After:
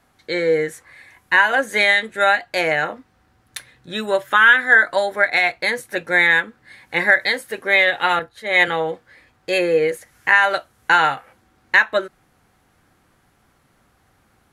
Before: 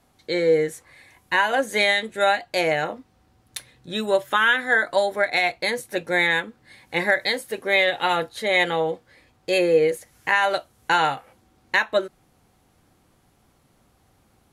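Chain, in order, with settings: peaking EQ 1.6 kHz +8 dB 1.1 oct; 8.19–8.68 s: three bands expanded up and down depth 70%

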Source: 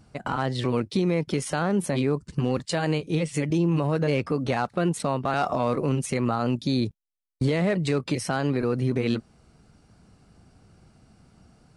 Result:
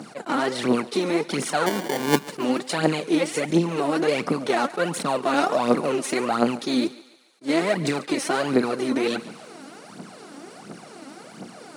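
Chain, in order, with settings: spectral levelling over time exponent 0.6; phaser 1.4 Hz, delay 3.8 ms, feedback 69%; 1.66–2.23 s: sample-rate reducer 1.3 kHz, jitter 0%; high-pass 200 Hz 24 dB/octave; on a send: thinning echo 143 ms, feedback 53%, high-pass 490 Hz, level -17 dB; on the sum: attacks held to a fixed rise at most 390 dB/s; trim -2 dB

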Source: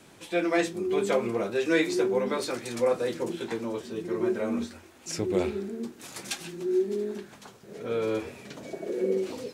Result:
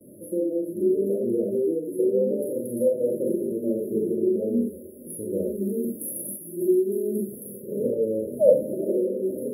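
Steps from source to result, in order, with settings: recorder AGC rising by 7 dB/s; frequency weighting D; gate with hold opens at -40 dBFS; 5.10–7.57 s: treble shelf 4 kHz +10.5 dB; compression 4:1, threshold -29 dBFS, peak gain reduction 14.5 dB; 7.96–8.50 s: painted sound fall 470–3100 Hz -22 dBFS; brick-wall FIR band-stop 640–10000 Hz; Schroeder reverb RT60 0.35 s, combs from 29 ms, DRR -0.5 dB; Shepard-style phaser rising 0.35 Hz; trim +7 dB

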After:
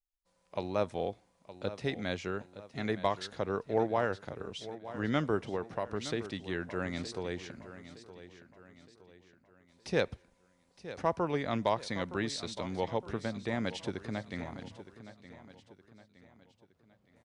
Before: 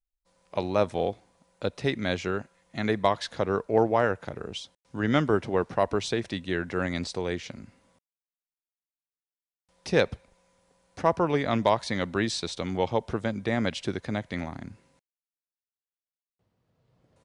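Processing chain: 5.53–6.05 s: compression 2.5:1, threshold -25 dBFS, peak gain reduction 5.5 dB; feedback delay 916 ms, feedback 43%, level -14 dB; trim -7 dB

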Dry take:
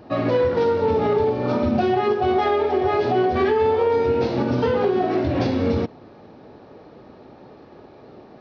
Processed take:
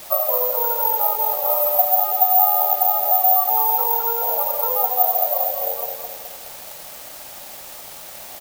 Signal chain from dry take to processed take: Chebyshev low-pass 1.4 kHz, order 8; spectral gate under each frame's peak -20 dB strong; steep high-pass 540 Hz 72 dB/octave; dynamic bell 730 Hz, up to +8 dB, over -39 dBFS, Q 4.4; compression 2.5:1, threshold -26 dBFS, peak gain reduction 9.5 dB; word length cut 8-bit, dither triangular; on a send: feedback delay 212 ms, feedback 51%, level -6 dB; on the sum: careless resampling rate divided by 3×, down none, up zero stuff; trim +3.5 dB

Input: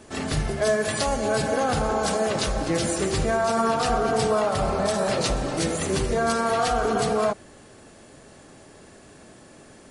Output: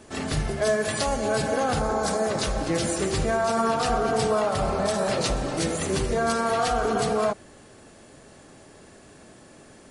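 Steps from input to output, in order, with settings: 1.80–2.43 s: peaking EQ 2.9 kHz -7.5 dB 0.5 oct; trim -1 dB

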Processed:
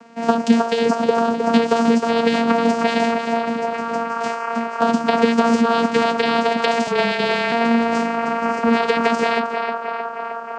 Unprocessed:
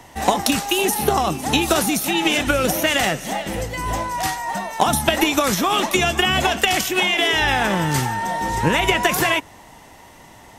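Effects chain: band-passed feedback delay 312 ms, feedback 83%, band-pass 970 Hz, level -3 dB; vocoder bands 8, saw 231 Hz; 6.87–7.52 s: frequency shift -24 Hz; trim +1 dB

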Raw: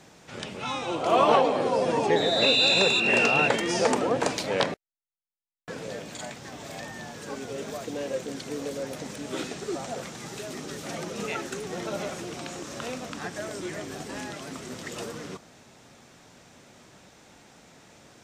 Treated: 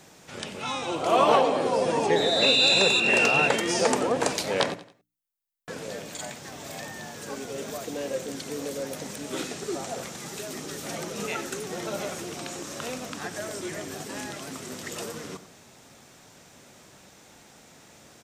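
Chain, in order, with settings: treble shelf 9.3 kHz +11.5 dB; hum notches 60/120/180/240/300 Hz; on a send: feedback delay 91 ms, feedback 35%, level -15.5 dB

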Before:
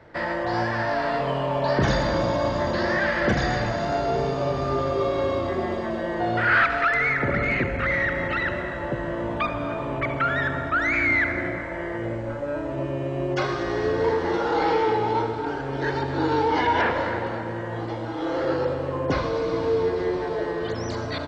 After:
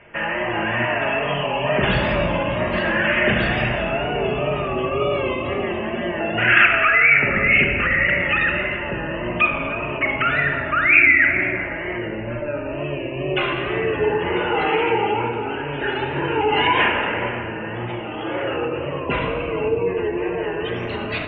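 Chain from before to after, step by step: wow and flutter 100 cents; resonant low-pass 2.7 kHz, resonance Q 8.3; spectral gate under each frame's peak -25 dB strong; simulated room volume 1400 m³, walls mixed, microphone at 1.3 m; trim -1 dB

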